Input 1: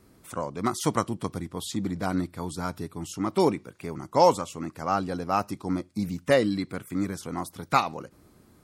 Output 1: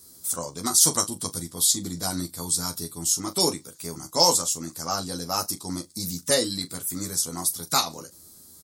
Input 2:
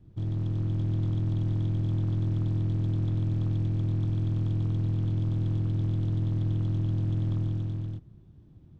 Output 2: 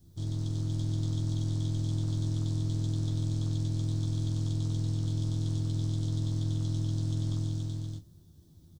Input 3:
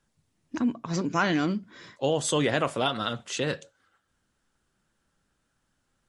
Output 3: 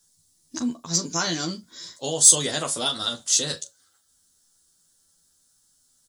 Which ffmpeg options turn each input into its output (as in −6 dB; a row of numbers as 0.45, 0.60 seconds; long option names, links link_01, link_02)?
-af "aecho=1:1:12|41:0.631|0.224,aexciter=amount=7.6:drive=7.8:freq=3800,volume=-5dB"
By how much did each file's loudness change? +4.0, −3.0, +6.5 LU